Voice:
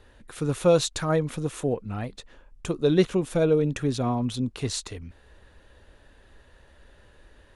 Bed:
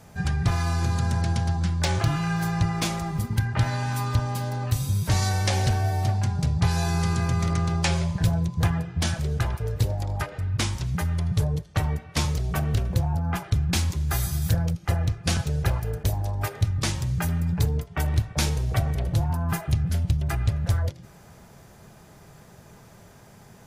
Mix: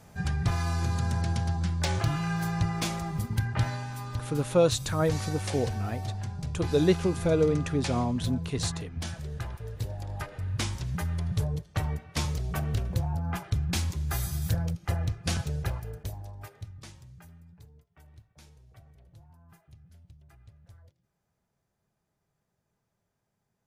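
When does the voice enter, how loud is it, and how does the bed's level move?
3.90 s, -2.5 dB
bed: 3.63 s -4 dB
3.91 s -10.5 dB
9.77 s -10.5 dB
10.49 s -5 dB
15.47 s -5 dB
17.68 s -30.5 dB

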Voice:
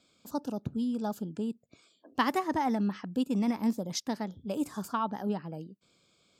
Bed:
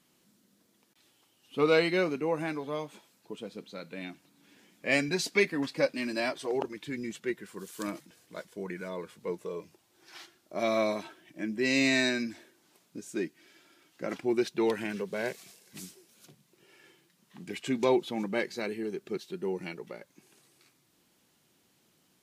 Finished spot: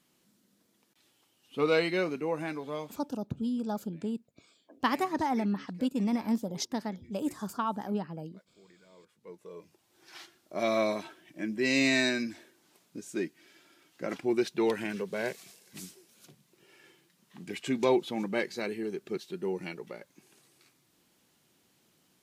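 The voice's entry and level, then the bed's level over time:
2.65 s, -0.5 dB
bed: 2.94 s -2 dB
3.16 s -22 dB
8.85 s -22 dB
9.95 s 0 dB

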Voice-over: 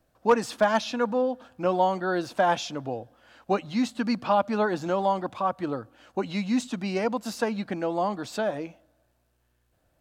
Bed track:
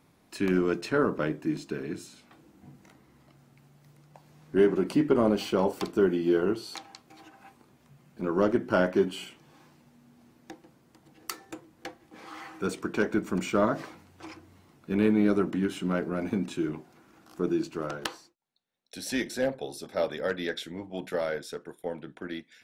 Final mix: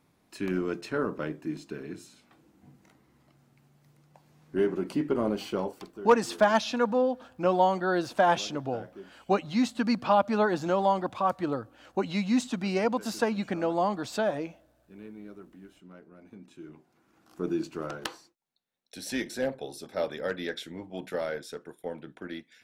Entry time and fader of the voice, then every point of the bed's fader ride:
5.80 s, 0.0 dB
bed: 5.57 s -4.5 dB
6.15 s -22 dB
16.22 s -22 dB
17.52 s -2 dB

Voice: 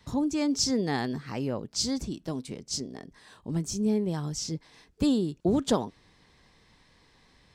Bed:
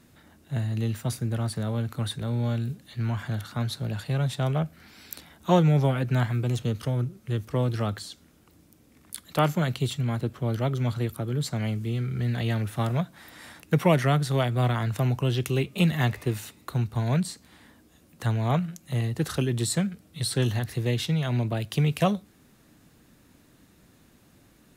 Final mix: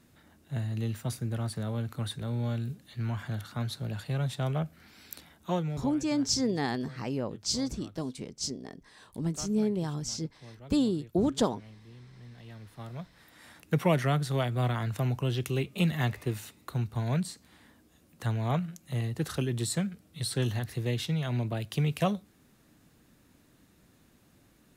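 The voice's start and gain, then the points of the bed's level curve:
5.70 s, -1.5 dB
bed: 5.28 s -4.5 dB
6.15 s -22.5 dB
12.38 s -22.5 dB
13.67 s -4.5 dB

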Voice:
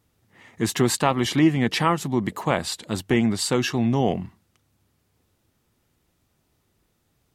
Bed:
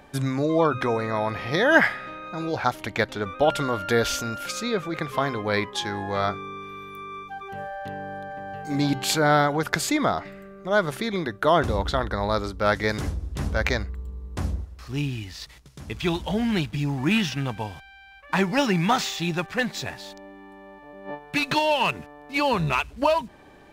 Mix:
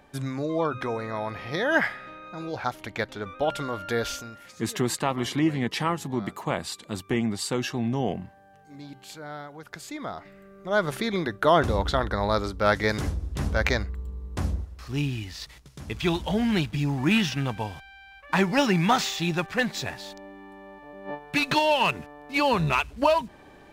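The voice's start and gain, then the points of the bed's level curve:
4.00 s, -5.5 dB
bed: 4.1 s -5.5 dB
4.54 s -19.5 dB
9.5 s -19.5 dB
10.94 s 0 dB

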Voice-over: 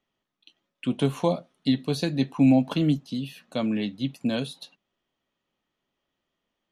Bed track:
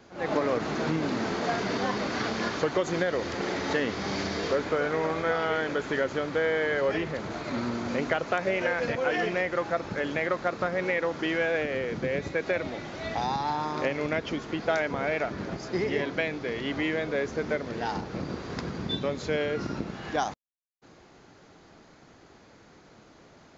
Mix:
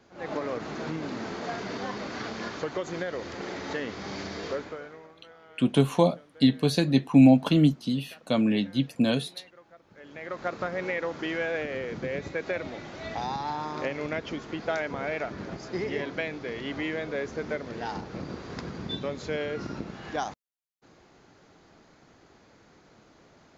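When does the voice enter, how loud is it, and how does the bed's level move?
4.75 s, +2.5 dB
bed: 4.56 s -5.5 dB
5.16 s -25.5 dB
9.84 s -25.5 dB
10.45 s -3 dB

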